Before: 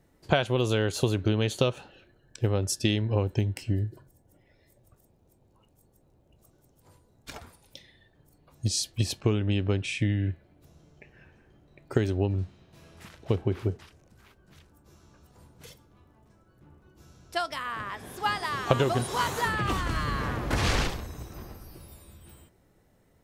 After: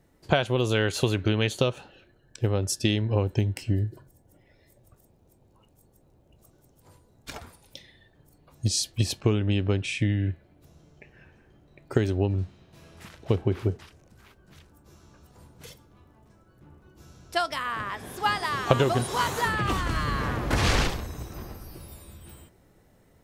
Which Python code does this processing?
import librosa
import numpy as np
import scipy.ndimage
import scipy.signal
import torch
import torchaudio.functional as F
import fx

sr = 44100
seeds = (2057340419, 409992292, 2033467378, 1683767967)

p1 = fx.peak_eq(x, sr, hz=2100.0, db=6.5, octaves=1.4, at=(0.75, 1.49))
p2 = fx.rider(p1, sr, range_db=10, speed_s=2.0)
p3 = p1 + (p2 * 10.0 ** (-0.5 / 20.0))
y = p3 * 10.0 ** (-4.0 / 20.0)